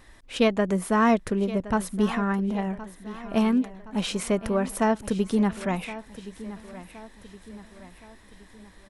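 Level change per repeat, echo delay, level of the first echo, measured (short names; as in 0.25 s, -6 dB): -6.5 dB, 1.069 s, -15.5 dB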